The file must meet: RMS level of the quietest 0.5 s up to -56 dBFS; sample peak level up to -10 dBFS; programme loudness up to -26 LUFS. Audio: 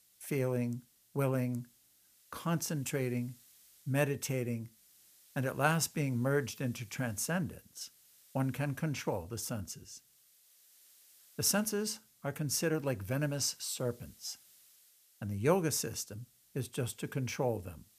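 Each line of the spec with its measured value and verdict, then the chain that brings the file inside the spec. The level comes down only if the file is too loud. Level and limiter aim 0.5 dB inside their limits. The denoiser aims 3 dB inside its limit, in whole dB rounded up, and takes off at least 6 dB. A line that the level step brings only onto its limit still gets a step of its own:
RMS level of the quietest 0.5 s -67 dBFS: pass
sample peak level -12.5 dBFS: pass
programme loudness -35.0 LUFS: pass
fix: none needed

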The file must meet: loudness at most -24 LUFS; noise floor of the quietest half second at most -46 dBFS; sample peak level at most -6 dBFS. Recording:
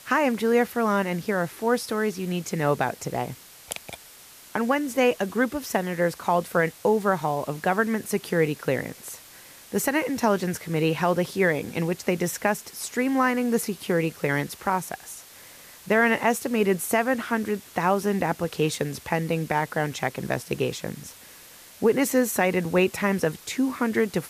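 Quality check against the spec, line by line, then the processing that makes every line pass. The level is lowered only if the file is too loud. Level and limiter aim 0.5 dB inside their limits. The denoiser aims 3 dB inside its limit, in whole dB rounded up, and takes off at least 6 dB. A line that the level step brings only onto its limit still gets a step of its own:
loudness -25.0 LUFS: pass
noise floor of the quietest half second -48 dBFS: pass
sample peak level -10.0 dBFS: pass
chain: none needed

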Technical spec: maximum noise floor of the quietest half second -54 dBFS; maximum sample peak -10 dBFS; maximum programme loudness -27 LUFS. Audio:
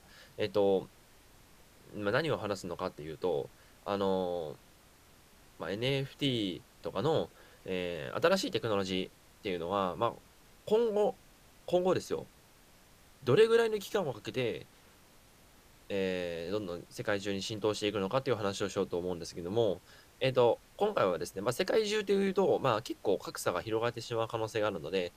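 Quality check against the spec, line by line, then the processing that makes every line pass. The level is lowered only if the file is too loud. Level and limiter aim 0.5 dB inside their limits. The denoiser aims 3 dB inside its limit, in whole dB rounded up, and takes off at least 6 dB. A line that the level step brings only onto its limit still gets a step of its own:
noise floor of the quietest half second -60 dBFS: pass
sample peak -13.0 dBFS: pass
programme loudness -33.0 LUFS: pass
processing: none needed

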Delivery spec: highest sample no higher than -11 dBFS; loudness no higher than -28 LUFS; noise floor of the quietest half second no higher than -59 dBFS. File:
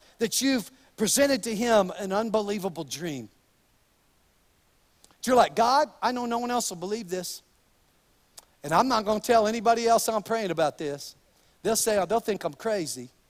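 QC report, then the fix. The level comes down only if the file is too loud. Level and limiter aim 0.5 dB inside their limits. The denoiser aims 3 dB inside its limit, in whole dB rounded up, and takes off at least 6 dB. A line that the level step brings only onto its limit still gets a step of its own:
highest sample -6.5 dBFS: fail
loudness -26.0 LUFS: fail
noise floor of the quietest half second -65 dBFS: pass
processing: trim -2.5 dB; peak limiter -11.5 dBFS

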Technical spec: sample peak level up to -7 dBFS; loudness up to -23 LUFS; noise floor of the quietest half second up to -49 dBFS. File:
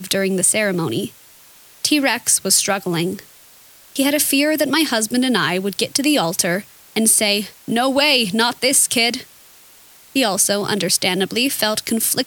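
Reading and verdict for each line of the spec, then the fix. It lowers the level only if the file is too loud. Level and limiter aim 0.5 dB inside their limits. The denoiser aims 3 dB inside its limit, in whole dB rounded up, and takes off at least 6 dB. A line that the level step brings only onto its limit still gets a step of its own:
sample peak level -2.0 dBFS: fail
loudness -17.0 LUFS: fail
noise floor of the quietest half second -47 dBFS: fail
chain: trim -6.5 dB

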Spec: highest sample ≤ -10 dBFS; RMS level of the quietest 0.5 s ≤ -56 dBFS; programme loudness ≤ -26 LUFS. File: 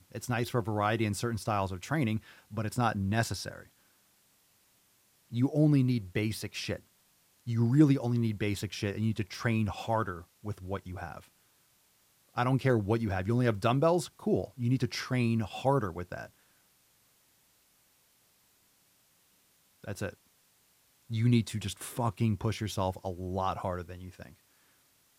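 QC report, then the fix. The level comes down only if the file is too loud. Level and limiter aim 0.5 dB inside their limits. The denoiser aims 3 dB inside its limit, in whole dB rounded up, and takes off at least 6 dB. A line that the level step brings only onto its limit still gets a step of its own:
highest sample -11.5 dBFS: pass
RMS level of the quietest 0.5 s -68 dBFS: pass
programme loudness -31.0 LUFS: pass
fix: none needed

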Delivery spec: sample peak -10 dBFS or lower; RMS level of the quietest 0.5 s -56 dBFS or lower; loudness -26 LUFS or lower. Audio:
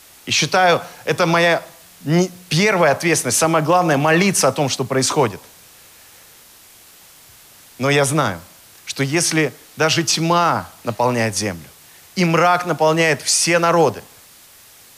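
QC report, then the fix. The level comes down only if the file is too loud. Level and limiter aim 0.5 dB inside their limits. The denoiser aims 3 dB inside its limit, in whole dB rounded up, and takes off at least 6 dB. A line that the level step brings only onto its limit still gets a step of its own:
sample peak -5.5 dBFS: fail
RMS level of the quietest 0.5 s -46 dBFS: fail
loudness -17.0 LUFS: fail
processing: noise reduction 6 dB, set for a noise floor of -46 dBFS; trim -9.5 dB

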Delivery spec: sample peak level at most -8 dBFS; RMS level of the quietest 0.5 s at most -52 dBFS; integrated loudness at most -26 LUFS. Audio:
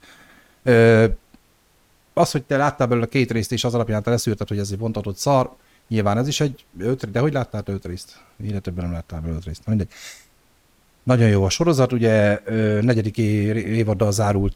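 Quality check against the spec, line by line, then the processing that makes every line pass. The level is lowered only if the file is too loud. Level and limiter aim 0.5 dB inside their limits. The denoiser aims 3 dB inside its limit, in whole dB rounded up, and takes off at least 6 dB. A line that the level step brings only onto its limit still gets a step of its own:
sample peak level -4.0 dBFS: fail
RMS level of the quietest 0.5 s -59 dBFS: pass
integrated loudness -20.5 LUFS: fail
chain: trim -6 dB

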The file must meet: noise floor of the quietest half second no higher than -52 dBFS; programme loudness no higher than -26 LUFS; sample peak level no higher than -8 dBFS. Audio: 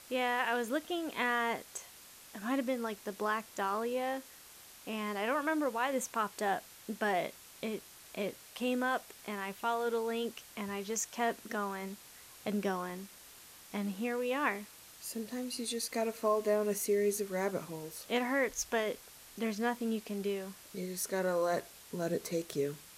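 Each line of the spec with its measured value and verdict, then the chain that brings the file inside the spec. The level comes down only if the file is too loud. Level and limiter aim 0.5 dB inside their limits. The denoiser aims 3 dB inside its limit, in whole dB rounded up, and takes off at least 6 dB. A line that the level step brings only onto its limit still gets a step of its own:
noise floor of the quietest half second -55 dBFS: pass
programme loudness -35.5 LUFS: pass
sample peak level -17.5 dBFS: pass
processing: none needed

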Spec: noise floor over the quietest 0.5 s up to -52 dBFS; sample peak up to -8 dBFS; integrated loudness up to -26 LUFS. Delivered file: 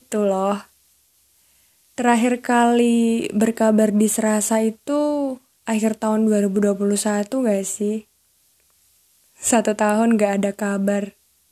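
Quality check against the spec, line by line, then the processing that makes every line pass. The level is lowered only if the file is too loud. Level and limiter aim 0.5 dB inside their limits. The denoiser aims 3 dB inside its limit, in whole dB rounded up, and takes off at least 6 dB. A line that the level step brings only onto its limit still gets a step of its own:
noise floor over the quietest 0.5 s -61 dBFS: pass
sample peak -2.5 dBFS: fail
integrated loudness -19.5 LUFS: fail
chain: trim -7 dB

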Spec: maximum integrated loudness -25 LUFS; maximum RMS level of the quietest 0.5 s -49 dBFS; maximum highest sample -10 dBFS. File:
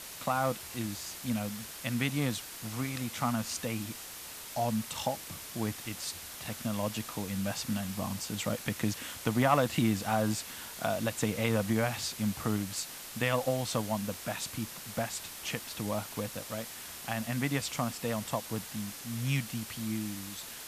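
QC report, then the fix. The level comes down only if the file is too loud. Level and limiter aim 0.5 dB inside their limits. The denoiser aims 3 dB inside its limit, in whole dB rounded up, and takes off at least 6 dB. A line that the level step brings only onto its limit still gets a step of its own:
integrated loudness -33.5 LUFS: pass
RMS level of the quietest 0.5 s -45 dBFS: fail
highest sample -12.5 dBFS: pass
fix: noise reduction 7 dB, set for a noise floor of -45 dBFS

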